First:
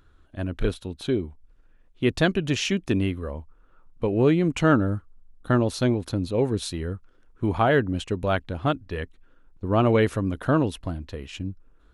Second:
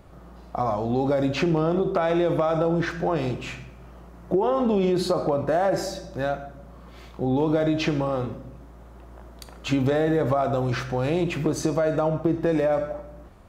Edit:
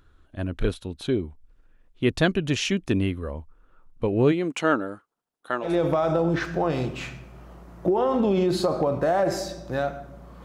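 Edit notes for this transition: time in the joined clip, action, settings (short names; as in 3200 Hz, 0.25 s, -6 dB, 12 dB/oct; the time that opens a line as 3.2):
first
4.31–5.76 HPF 280 Hz -> 670 Hz
5.68 switch to second from 2.14 s, crossfade 0.16 s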